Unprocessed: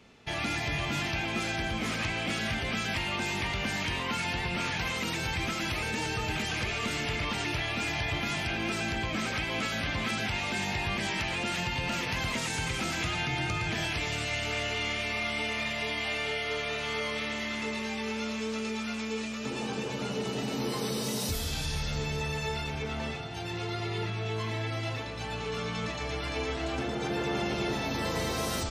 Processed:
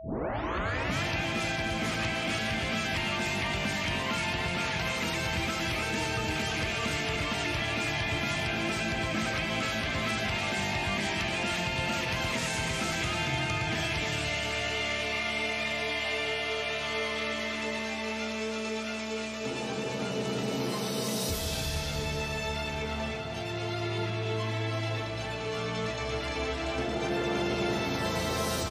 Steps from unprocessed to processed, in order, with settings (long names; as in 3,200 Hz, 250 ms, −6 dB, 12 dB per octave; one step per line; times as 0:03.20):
turntable start at the beginning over 1.03 s
high-pass filter 51 Hz
repeating echo 301 ms, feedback 39%, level −7 dB
steady tone 650 Hz −41 dBFS